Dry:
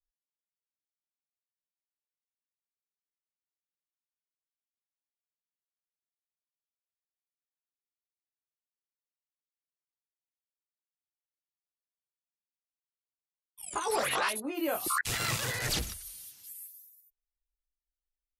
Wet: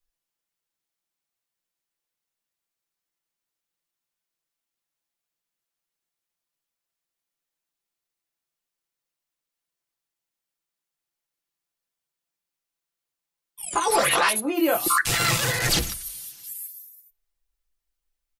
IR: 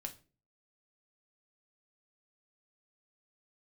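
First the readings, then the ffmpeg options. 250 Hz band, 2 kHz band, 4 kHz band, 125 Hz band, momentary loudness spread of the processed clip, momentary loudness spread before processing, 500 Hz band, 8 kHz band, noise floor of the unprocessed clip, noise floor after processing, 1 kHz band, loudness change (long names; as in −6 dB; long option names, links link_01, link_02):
+10.5 dB, +9.0 dB, +9.5 dB, +9.0 dB, 15 LU, 16 LU, +9.0 dB, +10.0 dB, below −85 dBFS, below −85 dBFS, +9.5 dB, +9.5 dB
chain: -filter_complex "[0:a]aecho=1:1:5.9:0.41,asplit=2[link_01][link_02];[1:a]atrim=start_sample=2205[link_03];[link_02][link_03]afir=irnorm=-1:irlink=0,volume=-7dB[link_04];[link_01][link_04]amix=inputs=2:normalize=0,volume=6.5dB"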